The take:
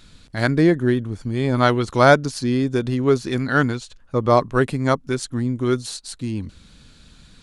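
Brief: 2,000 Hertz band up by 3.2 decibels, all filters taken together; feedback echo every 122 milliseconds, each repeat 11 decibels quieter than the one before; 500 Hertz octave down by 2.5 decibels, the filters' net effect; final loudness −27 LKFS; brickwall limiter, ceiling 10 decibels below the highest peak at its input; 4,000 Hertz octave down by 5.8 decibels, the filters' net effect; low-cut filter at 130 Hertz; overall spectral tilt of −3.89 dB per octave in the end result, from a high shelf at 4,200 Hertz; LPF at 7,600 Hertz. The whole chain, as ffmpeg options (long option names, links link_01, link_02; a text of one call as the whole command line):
ffmpeg -i in.wav -af "highpass=130,lowpass=7600,equalizer=frequency=500:width_type=o:gain=-3.5,equalizer=frequency=2000:width_type=o:gain=7,equalizer=frequency=4000:width_type=o:gain=-6.5,highshelf=frequency=4200:gain=-4.5,alimiter=limit=-9dB:level=0:latency=1,aecho=1:1:122|244|366:0.282|0.0789|0.0221,volume=-3.5dB" out.wav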